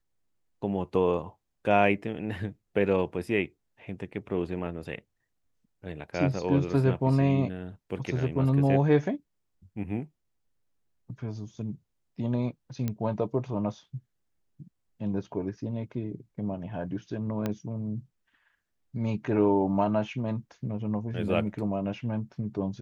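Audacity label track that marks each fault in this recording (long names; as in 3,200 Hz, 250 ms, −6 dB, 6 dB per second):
12.880000	12.880000	click −17 dBFS
17.460000	17.460000	click −16 dBFS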